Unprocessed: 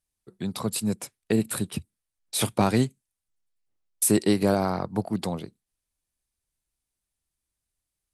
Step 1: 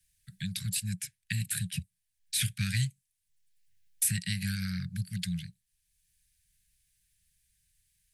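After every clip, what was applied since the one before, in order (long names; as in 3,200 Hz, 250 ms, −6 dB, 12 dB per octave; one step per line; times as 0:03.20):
Chebyshev band-stop filter 180–1,600 Hz, order 5
multiband upward and downward compressor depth 40%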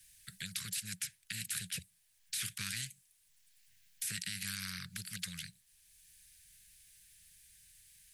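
low-shelf EQ 250 Hz −9.5 dB
brickwall limiter −25 dBFS, peak gain reduction 11 dB
every bin compressed towards the loudest bin 2 to 1
level +2.5 dB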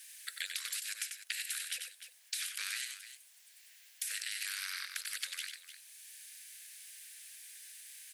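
downward compressor 6 to 1, threshold −46 dBFS, peak gain reduction 11.5 dB
Chebyshev high-pass with heavy ripple 490 Hz, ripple 3 dB
on a send: multi-tap delay 94/301 ms −6/−12 dB
on the sum: level +11.5 dB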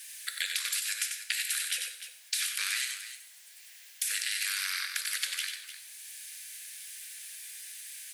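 convolution reverb, pre-delay 3 ms, DRR 6.5 dB
level +6.5 dB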